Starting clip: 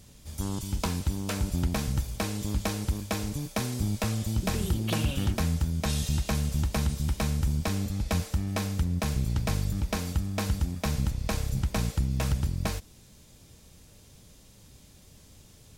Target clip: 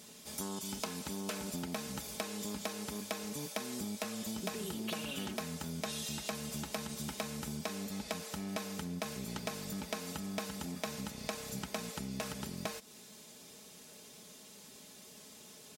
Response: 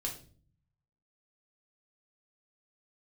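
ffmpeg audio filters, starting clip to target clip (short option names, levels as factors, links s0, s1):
-af "highpass=270,aecho=1:1:4.7:0.56,acompressor=threshold=0.0112:ratio=6,volume=1.33"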